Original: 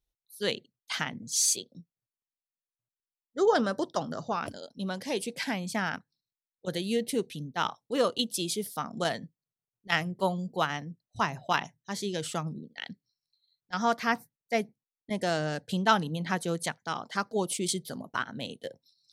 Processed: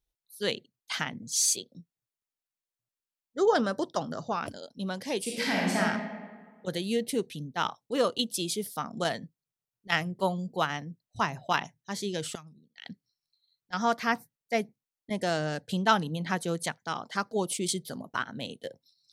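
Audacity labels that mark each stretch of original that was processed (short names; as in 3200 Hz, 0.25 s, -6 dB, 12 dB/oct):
5.210000	5.790000	reverb throw, RT60 1.5 s, DRR -4.5 dB
12.350000	12.850000	passive tone stack bass-middle-treble 5-5-5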